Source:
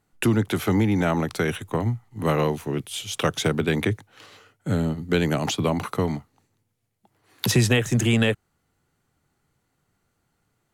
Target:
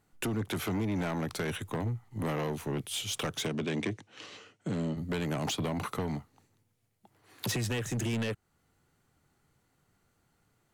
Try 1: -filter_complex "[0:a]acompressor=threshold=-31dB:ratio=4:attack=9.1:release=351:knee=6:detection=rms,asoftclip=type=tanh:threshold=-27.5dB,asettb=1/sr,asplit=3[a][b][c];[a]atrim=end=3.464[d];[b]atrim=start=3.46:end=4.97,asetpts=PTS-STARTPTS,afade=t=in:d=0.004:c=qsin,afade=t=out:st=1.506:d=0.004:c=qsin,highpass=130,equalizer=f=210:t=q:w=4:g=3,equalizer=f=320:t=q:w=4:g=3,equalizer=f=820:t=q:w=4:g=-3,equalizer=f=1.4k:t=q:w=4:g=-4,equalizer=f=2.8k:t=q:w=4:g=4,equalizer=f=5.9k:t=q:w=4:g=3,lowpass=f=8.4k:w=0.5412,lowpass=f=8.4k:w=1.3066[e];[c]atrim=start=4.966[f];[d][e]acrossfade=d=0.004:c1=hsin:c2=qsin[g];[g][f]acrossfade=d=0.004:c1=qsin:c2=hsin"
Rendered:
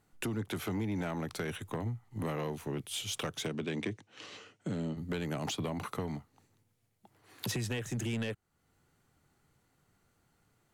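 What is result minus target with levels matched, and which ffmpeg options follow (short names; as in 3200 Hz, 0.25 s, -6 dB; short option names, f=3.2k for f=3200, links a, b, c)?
compressor: peak gain reduction +5.5 dB
-filter_complex "[0:a]acompressor=threshold=-23.5dB:ratio=4:attack=9.1:release=351:knee=6:detection=rms,asoftclip=type=tanh:threshold=-27.5dB,asettb=1/sr,asplit=3[a][b][c];[a]atrim=end=3.464[d];[b]atrim=start=3.46:end=4.97,asetpts=PTS-STARTPTS,afade=t=in:d=0.004:c=qsin,afade=t=out:st=1.506:d=0.004:c=qsin,highpass=130,equalizer=f=210:t=q:w=4:g=3,equalizer=f=320:t=q:w=4:g=3,equalizer=f=820:t=q:w=4:g=-3,equalizer=f=1.4k:t=q:w=4:g=-4,equalizer=f=2.8k:t=q:w=4:g=4,equalizer=f=5.9k:t=q:w=4:g=3,lowpass=f=8.4k:w=0.5412,lowpass=f=8.4k:w=1.3066[e];[c]atrim=start=4.966[f];[d][e]acrossfade=d=0.004:c1=hsin:c2=qsin[g];[g][f]acrossfade=d=0.004:c1=qsin:c2=hsin"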